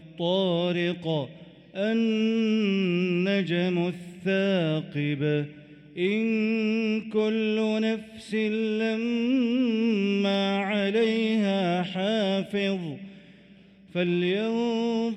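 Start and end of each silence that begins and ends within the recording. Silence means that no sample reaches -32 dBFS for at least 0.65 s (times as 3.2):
12.95–13.95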